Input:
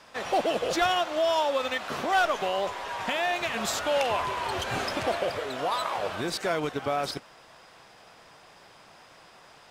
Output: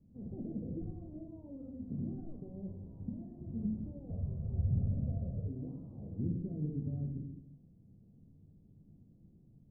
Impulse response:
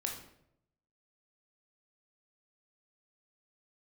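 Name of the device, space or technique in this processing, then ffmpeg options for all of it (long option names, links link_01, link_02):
club heard from the street: -filter_complex "[0:a]alimiter=limit=-22dB:level=0:latency=1:release=28,lowpass=frequency=220:width=0.5412,lowpass=frequency=220:width=1.3066[link_01];[1:a]atrim=start_sample=2205[link_02];[link_01][link_02]afir=irnorm=-1:irlink=0,asettb=1/sr,asplit=3[link_03][link_04][link_05];[link_03]atrim=end=4.104[link_06];[link_04]atrim=start=4.1:end=5.48,asetpts=PTS-STARTPTS,afade=type=in:duration=0.004:curve=qsin,afade=type=out:start_time=1.376:duration=0.004:curve=qsin,aecho=1:1:1.6:0.89,atrim=end_sample=60858[link_07];[link_05]atrim=start=5.476[link_08];[link_06][link_07]acrossfade=duration=0.004:curve1=hsin:curve2=qsin[link_09];[link_09][link_08]acrossfade=duration=0.004:curve1=qsin:curve2=hsin,volume=5dB"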